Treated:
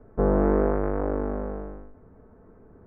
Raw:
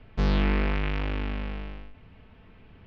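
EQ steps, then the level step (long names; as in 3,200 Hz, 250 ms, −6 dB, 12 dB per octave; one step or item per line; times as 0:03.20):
Butterworth low-pass 1,500 Hz 36 dB per octave
dynamic equaliser 630 Hz, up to +7 dB, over −45 dBFS, Q 0.93
drawn EQ curve 140 Hz 0 dB, 420 Hz +11 dB, 910 Hz +2 dB
−2.5 dB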